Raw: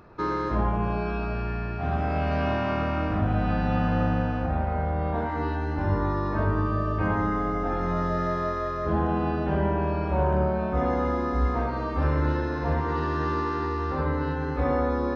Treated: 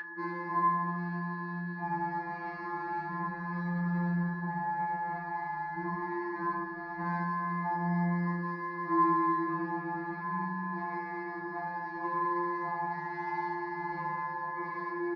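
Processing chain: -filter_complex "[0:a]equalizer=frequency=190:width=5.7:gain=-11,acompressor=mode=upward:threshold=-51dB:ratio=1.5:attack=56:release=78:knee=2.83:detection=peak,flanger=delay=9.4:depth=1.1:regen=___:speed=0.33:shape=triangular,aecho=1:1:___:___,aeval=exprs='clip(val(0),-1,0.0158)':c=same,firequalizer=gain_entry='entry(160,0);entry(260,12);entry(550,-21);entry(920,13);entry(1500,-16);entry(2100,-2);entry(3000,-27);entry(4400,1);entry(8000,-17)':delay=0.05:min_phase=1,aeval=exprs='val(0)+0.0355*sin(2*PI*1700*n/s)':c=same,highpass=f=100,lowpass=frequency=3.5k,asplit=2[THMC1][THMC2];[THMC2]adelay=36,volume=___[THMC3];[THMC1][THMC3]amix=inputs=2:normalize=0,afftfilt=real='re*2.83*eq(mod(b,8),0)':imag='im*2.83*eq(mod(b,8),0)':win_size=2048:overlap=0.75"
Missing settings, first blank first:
6, 75, 0.596, -11dB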